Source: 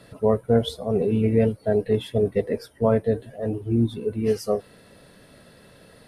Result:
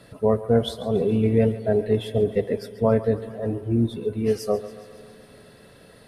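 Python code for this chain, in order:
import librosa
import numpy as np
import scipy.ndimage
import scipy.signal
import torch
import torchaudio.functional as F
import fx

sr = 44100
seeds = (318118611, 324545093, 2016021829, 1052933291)

y = fx.echo_thinned(x, sr, ms=139, feedback_pct=64, hz=420.0, wet_db=-15.0)
y = fx.rev_spring(y, sr, rt60_s=3.8, pass_ms=(45, 50), chirp_ms=55, drr_db=17.0)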